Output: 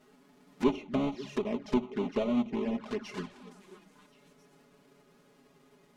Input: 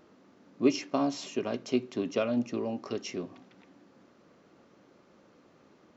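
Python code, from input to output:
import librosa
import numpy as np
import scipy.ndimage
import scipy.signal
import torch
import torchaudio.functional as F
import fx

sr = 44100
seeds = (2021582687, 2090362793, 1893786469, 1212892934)

p1 = fx.halfwave_hold(x, sr)
p2 = p1 + 0.64 * np.pad(p1, (int(4.8 * sr / 1000.0), 0))[:len(p1)]
p3 = p2 + fx.echo_stepped(p2, sr, ms=269, hz=160.0, octaves=1.4, feedback_pct=70, wet_db=-10.5, dry=0)
p4 = fx.env_flanger(p3, sr, rest_ms=8.2, full_db=-22.5)
p5 = np.clip(10.0 ** (19.5 / 20.0) * p4, -1.0, 1.0) / 10.0 ** (19.5 / 20.0)
p6 = p4 + F.gain(torch.from_numpy(p5), -10.0).numpy()
p7 = fx.env_lowpass_down(p6, sr, base_hz=2200.0, full_db=-22.0)
y = F.gain(torch.from_numpy(p7), -7.0).numpy()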